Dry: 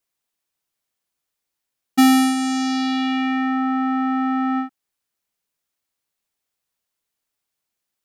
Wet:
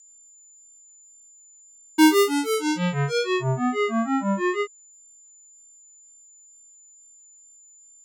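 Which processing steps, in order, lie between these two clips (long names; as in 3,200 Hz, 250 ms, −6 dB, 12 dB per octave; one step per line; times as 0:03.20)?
granular cloud 228 ms, grains 6.2 per second, spray 32 ms, pitch spread up and down by 12 semitones
steady tone 7,100 Hz −49 dBFS
tape wow and flutter 17 cents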